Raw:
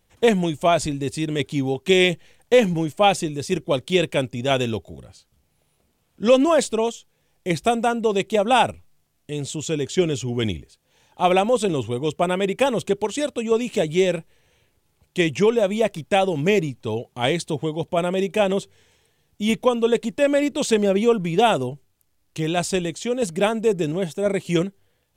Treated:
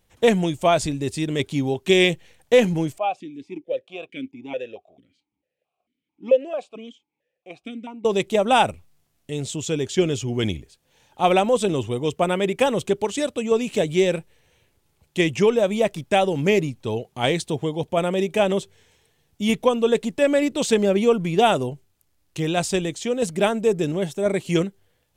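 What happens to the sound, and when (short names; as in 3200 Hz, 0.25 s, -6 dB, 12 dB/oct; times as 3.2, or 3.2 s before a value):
2.98–8.05 vowel sequencer 4.5 Hz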